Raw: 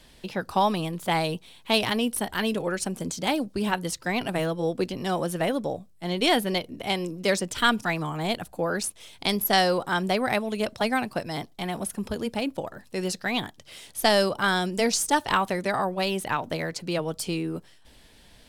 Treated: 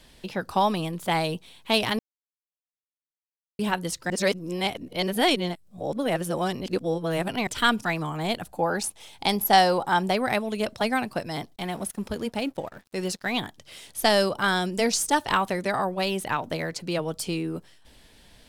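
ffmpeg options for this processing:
-filter_complex "[0:a]asettb=1/sr,asplit=3[a][b][c];[a]atrim=end=8.544[d];[b]atrim=start=8.54:end=10.11,asetpts=PTS-STARTPTS,afade=t=in:d=0.004:c=qsin,afade=t=out:st=1.566:d=0.004:c=qsin,equalizer=f=830:t=o:w=0.28:g=11[e];[c]atrim=start=10.106[f];[d][e]acrossfade=d=0.004:c1=hsin:c2=qsin[g];[g][f]acrossfade=d=0.004:c1=qsin:c2=hsin,asettb=1/sr,asplit=3[h][i][j];[h]atrim=end=11.564[k];[i]atrim=start=11.56:end=13.33,asetpts=PTS-STARTPTS,afade=t=in:d=0.004:c=qsin,afade=t=out:st=1.766:d=0.004:c=qsin,aeval=exprs='sgn(val(0))*max(abs(val(0))-0.00282,0)':c=same[l];[j]atrim=start=13.326[m];[k][l]acrossfade=d=0.004:c1=hsin:c2=qsin[n];[n][m]acrossfade=d=0.004:c1=qsin:c2=hsin,asplit=5[o][p][q][r][s];[o]atrim=end=1.99,asetpts=PTS-STARTPTS,afade=t=out:st=1.986:d=0.004:c=hsin[t];[p]atrim=start=1.99:end=3.59,asetpts=PTS-STARTPTS,volume=0[u];[q]atrim=start=3.59:end=4.102,asetpts=PTS-STARTPTS,afade=t=in:d=0.004:c=hsin[v];[r]atrim=start=4.098:end=7.472,asetpts=PTS-STARTPTS,areverse[w];[s]atrim=start=7.468[x];[t][u][v]concat=n=3:v=0:a=1[y];[y][w]acrossfade=d=0.004:c1=hsin:c2=hsin[z];[z][x]acrossfade=d=0.004:c1=hsin:c2=hsin"

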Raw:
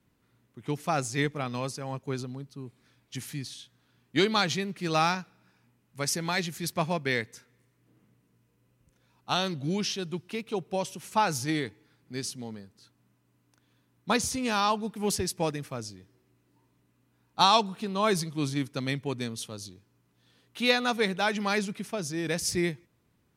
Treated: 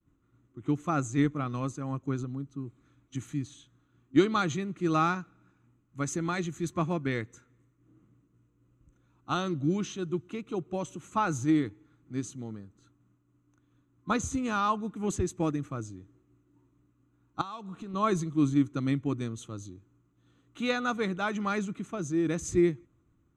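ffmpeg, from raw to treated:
-filter_complex "[0:a]asettb=1/sr,asplit=3[a][b][c];[a]atrim=end=17.414[d];[b]atrim=start=17.41:end=17.94,asetpts=PTS-STARTPTS,afade=t=in:d=0.004:c=qsin,afade=t=out:st=0.526:d=0.004:c=qsin,acompressor=threshold=-36dB:ratio=5:attack=3.2:release=140:knee=1:detection=peak[e];[c]atrim=start=17.936[f];[d][e]acrossfade=d=0.004:c1=hsin:c2=qsin[g];[g][f]acrossfade=d=0.004:c1=qsin:c2=hsin,aemphasis=mode=reproduction:type=bsi,agate=range=-33dB:threshold=-59dB:ratio=3:detection=peak,superequalizer=6b=2.82:10b=2.51:14b=0.398:15b=3.16,volume=-6dB"

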